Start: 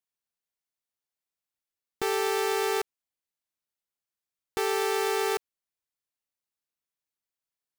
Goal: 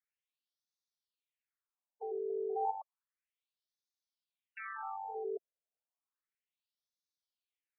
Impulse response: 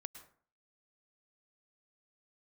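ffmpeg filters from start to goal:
-filter_complex "[0:a]alimiter=level_in=6dB:limit=-24dB:level=0:latency=1,volume=-6dB,asettb=1/sr,asplit=3[link_01][link_02][link_03];[link_01]atrim=end=2.304[link_04];[link_02]atrim=start=2.3:end=2.71,asetpts=PTS-STARTPTS,afade=type=in:duration=0.004:curve=qsin,afade=type=out:start_time=0.406:duration=0.004:curve=qsin,equalizer=frequency=810:width=3:gain=12.5[link_05];[link_03]atrim=start=2.706[link_06];[link_04][link_05]acrossfade=duration=0.004:curve1=hsin:curve2=qsin[link_07];[link_07][link_06]acrossfade=duration=0.004:curve1=qsin:curve2=hsin,afftfilt=real='re*between(b*sr/1024,490*pow(4800/490,0.5+0.5*sin(2*PI*0.32*pts/sr))/1.41,490*pow(4800/490,0.5+0.5*sin(2*PI*0.32*pts/sr))*1.41)':imag='im*between(b*sr/1024,490*pow(4800/490,0.5+0.5*sin(2*PI*0.32*pts/sr))/1.41,490*pow(4800/490,0.5+0.5*sin(2*PI*0.32*pts/sr))*1.41)':win_size=1024:overlap=0.75,volume=1.5dB"

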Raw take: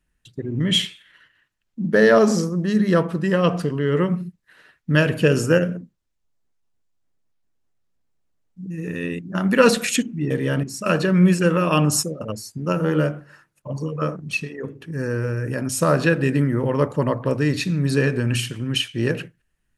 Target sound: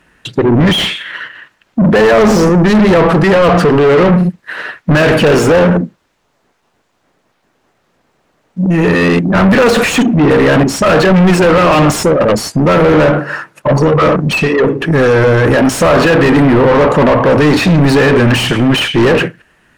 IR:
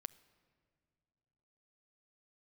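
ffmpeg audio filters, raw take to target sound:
-filter_complex "[0:a]asplit=2[link_01][link_02];[link_02]highpass=frequency=720:poles=1,volume=37dB,asoftclip=type=tanh:threshold=-2dB[link_03];[link_01][link_03]amix=inputs=2:normalize=0,lowpass=frequency=1100:poles=1,volume=-6dB,acontrast=53,volume=-1.5dB"

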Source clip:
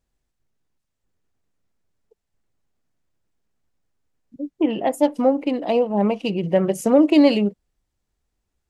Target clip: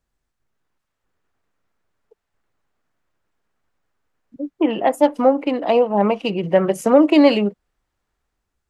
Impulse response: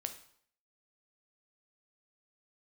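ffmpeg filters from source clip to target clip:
-filter_complex "[0:a]equalizer=frequency=1300:width_type=o:width=1.2:gain=6,acrossover=split=320|3700[link_01][link_02][link_03];[link_02]dynaudnorm=framelen=150:gausssize=7:maxgain=6dB[link_04];[link_01][link_04][link_03]amix=inputs=3:normalize=0,volume=-1dB"

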